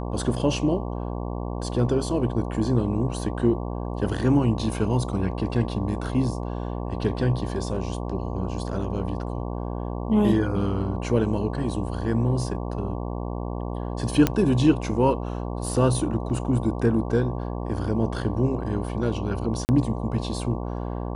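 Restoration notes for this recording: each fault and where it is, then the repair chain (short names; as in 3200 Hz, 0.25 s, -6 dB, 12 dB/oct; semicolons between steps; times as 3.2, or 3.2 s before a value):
buzz 60 Hz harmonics 19 -30 dBFS
14.27 pop -6 dBFS
16.3 gap 2.6 ms
19.65–19.69 gap 39 ms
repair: de-click; de-hum 60 Hz, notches 19; interpolate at 16.3, 2.6 ms; interpolate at 19.65, 39 ms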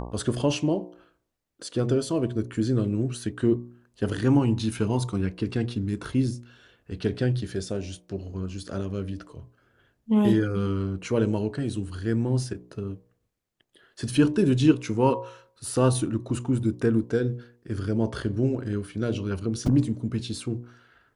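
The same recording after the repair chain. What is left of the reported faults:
none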